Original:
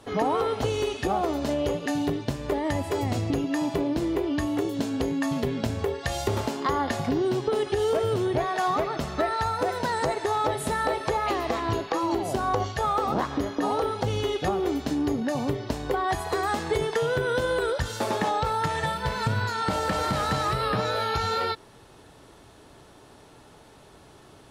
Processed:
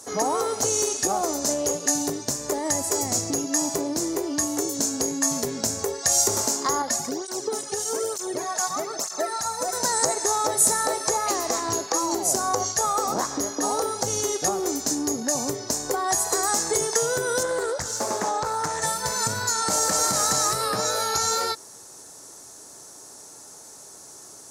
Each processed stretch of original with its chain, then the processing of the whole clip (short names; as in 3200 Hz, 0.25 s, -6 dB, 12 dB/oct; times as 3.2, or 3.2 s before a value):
6.82–9.73 low shelf 140 Hz -5 dB + tape flanging out of phase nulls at 1.1 Hz, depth 3.1 ms
17.43–18.82 high shelf 3300 Hz -10 dB + Doppler distortion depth 0.55 ms
whole clip: HPF 360 Hz 6 dB/oct; resonant high shelf 4500 Hz +13.5 dB, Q 3; gain +2 dB